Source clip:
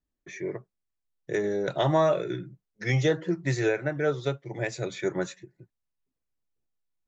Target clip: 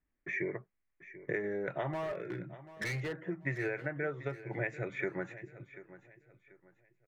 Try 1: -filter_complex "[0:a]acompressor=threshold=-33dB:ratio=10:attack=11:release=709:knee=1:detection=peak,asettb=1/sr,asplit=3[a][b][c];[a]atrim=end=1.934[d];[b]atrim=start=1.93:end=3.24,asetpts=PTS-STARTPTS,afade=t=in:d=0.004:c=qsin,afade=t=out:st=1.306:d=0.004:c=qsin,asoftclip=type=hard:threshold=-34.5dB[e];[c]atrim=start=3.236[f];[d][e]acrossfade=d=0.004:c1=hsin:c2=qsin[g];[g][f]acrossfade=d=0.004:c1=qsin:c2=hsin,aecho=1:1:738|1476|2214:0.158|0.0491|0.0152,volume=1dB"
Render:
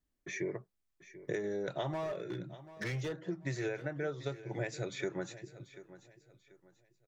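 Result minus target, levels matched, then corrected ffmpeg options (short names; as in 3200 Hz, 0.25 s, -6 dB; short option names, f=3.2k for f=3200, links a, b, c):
8000 Hz band +8.5 dB
-filter_complex "[0:a]acompressor=threshold=-33dB:ratio=10:attack=11:release=709:knee=1:detection=peak,highshelf=f=3.1k:t=q:w=3:g=-13.5,asettb=1/sr,asplit=3[a][b][c];[a]atrim=end=1.934[d];[b]atrim=start=1.93:end=3.24,asetpts=PTS-STARTPTS,afade=t=in:d=0.004:c=qsin,afade=t=out:st=1.306:d=0.004:c=qsin,asoftclip=type=hard:threshold=-34.5dB[e];[c]atrim=start=3.236[f];[d][e]acrossfade=d=0.004:c1=hsin:c2=qsin[g];[g][f]acrossfade=d=0.004:c1=qsin:c2=hsin,aecho=1:1:738|1476|2214:0.158|0.0491|0.0152,volume=1dB"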